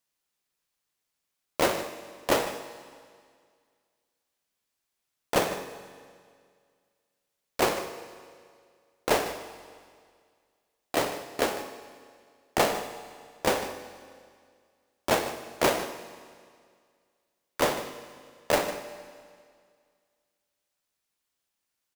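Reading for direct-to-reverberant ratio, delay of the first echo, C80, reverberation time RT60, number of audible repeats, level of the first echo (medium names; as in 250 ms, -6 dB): 8.5 dB, 152 ms, 10.0 dB, 2.0 s, 1, -14.0 dB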